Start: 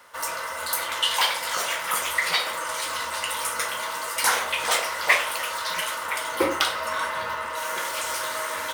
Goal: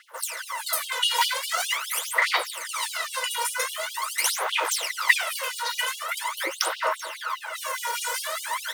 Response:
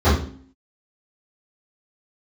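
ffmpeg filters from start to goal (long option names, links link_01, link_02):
-af "aphaser=in_gain=1:out_gain=1:delay=2.1:decay=0.79:speed=0.44:type=sinusoidal,afftfilt=real='re*gte(b*sr/1024,300*pow(2900/300,0.5+0.5*sin(2*PI*4.9*pts/sr)))':imag='im*gte(b*sr/1024,300*pow(2900/300,0.5+0.5*sin(2*PI*4.9*pts/sr)))':win_size=1024:overlap=0.75,volume=-4dB"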